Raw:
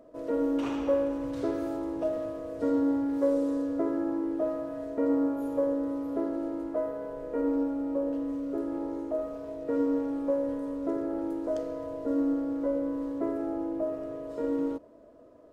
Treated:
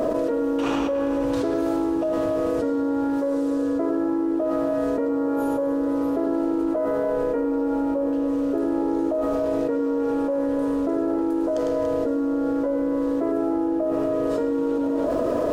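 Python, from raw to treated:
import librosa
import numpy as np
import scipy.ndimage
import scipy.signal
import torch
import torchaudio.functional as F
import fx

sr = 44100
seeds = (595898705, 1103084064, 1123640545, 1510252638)

y = fx.low_shelf(x, sr, hz=270.0, db=-4.0)
y = fx.notch(y, sr, hz=2100.0, q=17.0)
y = fx.echo_multitap(y, sr, ms=(103, 286), db=(-7.5, -14.5))
y = fx.env_flatten(y, sr, amount_pct=100)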